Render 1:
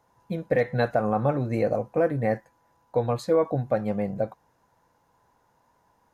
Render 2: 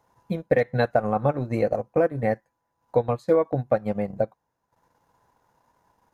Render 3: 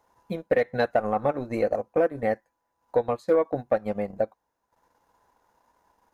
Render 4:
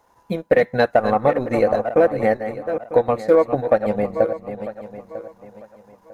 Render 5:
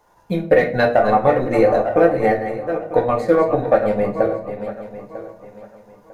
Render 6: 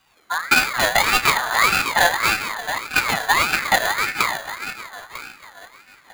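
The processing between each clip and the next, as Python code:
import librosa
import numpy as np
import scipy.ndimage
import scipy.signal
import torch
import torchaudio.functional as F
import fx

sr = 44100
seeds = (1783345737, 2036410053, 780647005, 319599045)

y1 = fx.transient(x, sr, attack_db=4, sustain_db=-12)
y2 = fx.peak_eq(y1, sr, hz=130.0, db=-11.0, octaves=0.97)
y2 = 10.0 ** (-10.0 / 20.0) * np.tanh(y2 / 10.0 ** (-10.0 / 20.0))
y3 = fx.reverse_delay_fb(y2, sr, ms=474, feedback_pct=50, wet_db=-9.5)
y3 = y3 * librosa.db_to_amplitude(7.0)
y4 = fx.room_shoebox(y3, sr, seeds[0], volume_m3=32.0, walls='mixed', distance_m=0.47)
y5 = np.r_[np.sort(y4[:len(y4) // 16 * 16].reshape(-1, 16), axis=1).ravel(), y4[len(y4) // 16 * 16:]]
y5 = fx.ring_lfo(y5, sr, carrier_hz=1600.0, swing_pct=25, hz=1.7)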